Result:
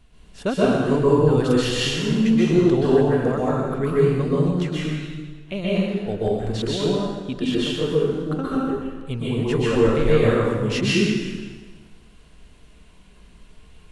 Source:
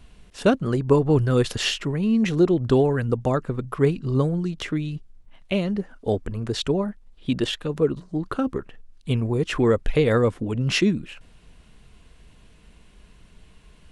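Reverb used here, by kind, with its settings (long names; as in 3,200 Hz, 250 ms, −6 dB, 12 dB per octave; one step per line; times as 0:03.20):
dense smooth reverb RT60 1.4 s, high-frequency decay 0.9×, pre-delay 115 ms, DRR −7.5 dB
level −6 dB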